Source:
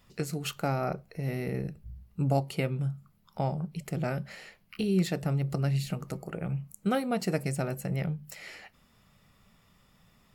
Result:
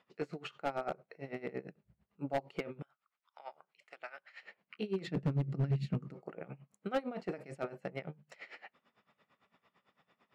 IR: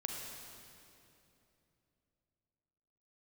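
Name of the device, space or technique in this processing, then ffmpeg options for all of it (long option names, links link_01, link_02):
helicopter radio: -filter_complex "[0:a]asettb=1/sr,asplit=3[link_01][link_02][link_03];[link_01]atrim=end=2.824[link_04];[link_02]atrim=start=2.82:end=4.43,asetpts=PTS-STARTPTS,afade=type=in:duration=0.004:curve=qsin,afade=type=out:start_time=1.606:duration=0.004:curve=qsin,highpass=1300[link_05];[link_03]atrim=start=4.426[link_06];[link_04][link_05]acrossfade=duration=0.004:curve1=hsin:curve2=qsin[link_07];[link_07][link_06]acrossfade=duration=0.004:curve1=qsin:curve2=hsin,asplit=3[link_08][link_09][link_10];[link_08]afade=type=out:start_time=5.06:duration=0.02[link_11];[link_09]asubboost=boost=12:cutoff=200,afade=type=in:start_time=5.06:duration=0.02,afade=type=out:start_time=6.13:duration=0.02[link_12];[link_10]afade=type=in:start_time=6.13:duration=0.02[link_13];[link_11][link_12][link_13]amix=inputs=3:normalize=0,highpass=320,lowpass=2600,aeval=exprs='val(0)*pow(10,-19*(0.5-0.5*cos(2*PI*8.9*n/s))/20)':channel_layout=same,asoftclip=type=hard:threshold=-28.5dB,volume=1.5dB"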